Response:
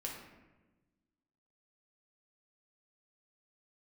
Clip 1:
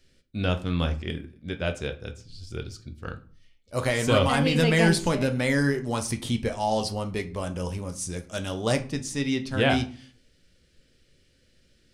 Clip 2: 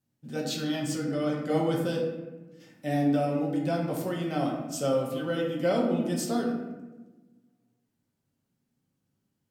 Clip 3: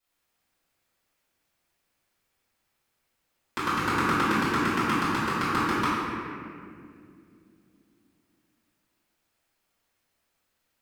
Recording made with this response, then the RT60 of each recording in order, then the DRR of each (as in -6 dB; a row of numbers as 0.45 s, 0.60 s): 2; 0.40 s, 1.2 s, 2.3 s; 6.5 dB, -2.0 dB, -14.0 dB